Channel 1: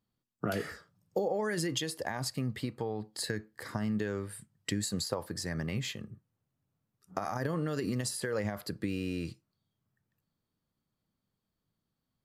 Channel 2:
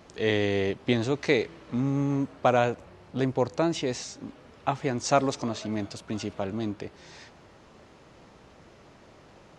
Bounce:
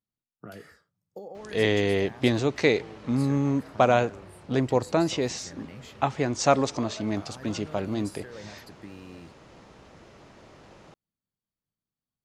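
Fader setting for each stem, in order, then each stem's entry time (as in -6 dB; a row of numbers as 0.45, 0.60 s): -10.5, +2.0 dB; 0.00, 1.35 s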